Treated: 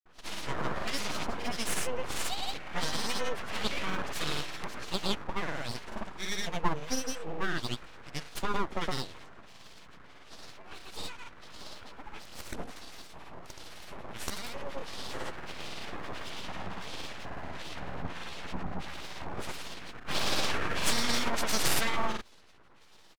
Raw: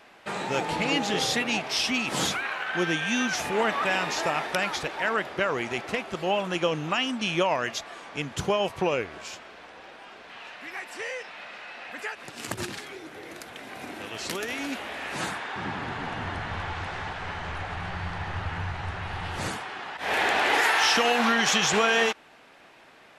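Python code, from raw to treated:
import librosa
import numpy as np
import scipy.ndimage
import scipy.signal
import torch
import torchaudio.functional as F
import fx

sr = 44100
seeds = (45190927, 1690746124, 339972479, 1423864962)

y = fx.harmonic_tremolo(x, sr, hz=1.5, depth_pct=100, crossover_hz=1000.0)
y = np.abs(y)
y = fx.hum_notches(y, sr, base_hz=50, count=2)
y = fx.granulator(y, sr, seeds[0], grain_ms=110.0, per_s=18.0, spray_ms=100.0, spread_st=0)
y = y * librosa.db_to_amplitude(2.5)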